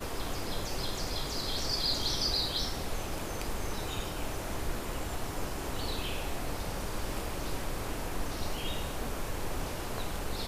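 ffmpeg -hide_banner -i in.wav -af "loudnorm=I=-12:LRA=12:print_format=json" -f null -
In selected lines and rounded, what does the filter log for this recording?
"input_i" : "-35.4",
"input_tp" : "-18.0",
"input_lra" : "4.9",
"input_thresh" : "-45.4",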